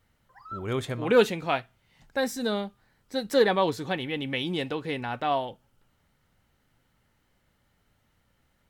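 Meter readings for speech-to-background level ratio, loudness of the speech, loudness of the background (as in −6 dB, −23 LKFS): 15.5 dB, −27.5 LKFS, −43.0 LKFS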